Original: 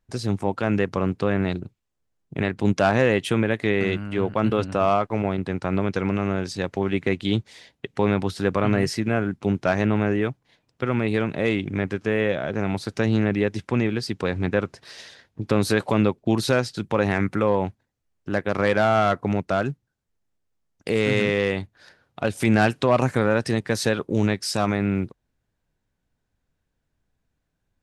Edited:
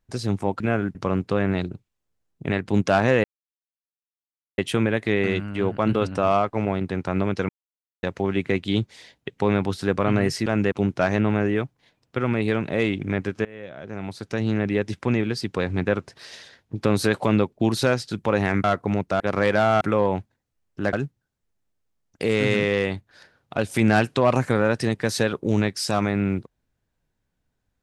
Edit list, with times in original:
0.60–0.86 s: swap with 9.03–9.38 s
3.15 s: insert silence 1.34 s
6.06–6.60 s: mute
12.11–13.57 s: fade in, from -24 dB
17.30–18.42 s: swap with 19.03–19.59 s

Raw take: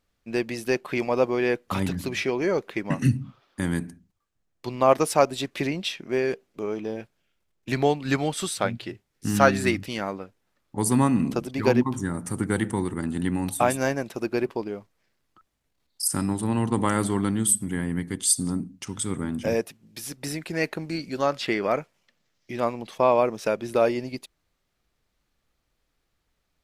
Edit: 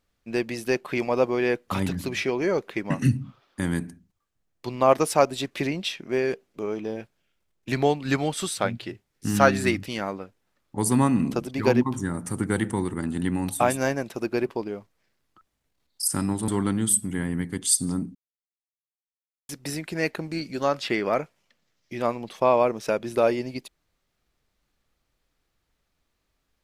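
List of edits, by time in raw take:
16.48–17.06 s: delete
18.73–20.07 s: mute

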